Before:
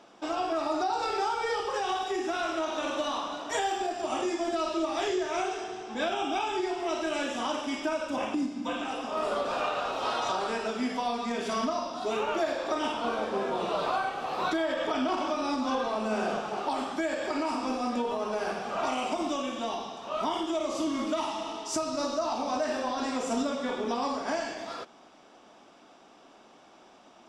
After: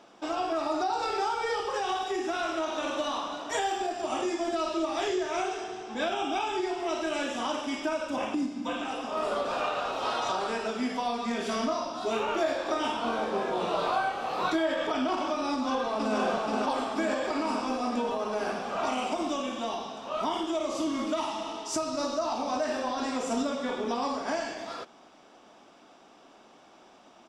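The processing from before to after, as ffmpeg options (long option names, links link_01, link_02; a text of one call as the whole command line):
ffmpeg -i in.wav -filter_complex "[0:a]asettb=1/sr,asplit=3[link_01][link_02][link_03];[link_01]atrim=end=11.234[link_04];[link_02]atrim=start=11.23:end=14.87,asetpts=PTS-STARTPTS,afade=type=in:duration=0.004:curve=qsin,afade=type=out:start_time=3.636:duration=0.004:curve=qsin,asplit=2[link_05][link_06];[link_06]adelay=22,volume=-6dB[link_07];[link_05][link_07]amix=inputs=2:normalize=0,atrim=end_sample=160524[link_08];[link_03]atrim=start=14.866[link_09];[link_04][link_08]acrossfade=duration=0.004:curve1=hsin:curve2=qsin[link_10];[link_10][link_09]acrossfade=duration=0.004:curve1=qsin:curve2=hsin,asplit=2[link_11][link_12];[link_12]afade=type=in:start_time=15.51:duration=0.01,afade=type=out:start_time=16.17:duration=0.01,aecho=0:1:480|960|1440|1920|2400|2880|3360|3840|4320|4800|5280|5760:0.707946|0.530959|0.39822|0.298665|0.223998|0.167999|0.125999|0.0944994|0.0708745|0.0531559|0.0398669|0.0299002[link_13];[link_11][link_13]amix=inputs=2:normalize=0" out.wav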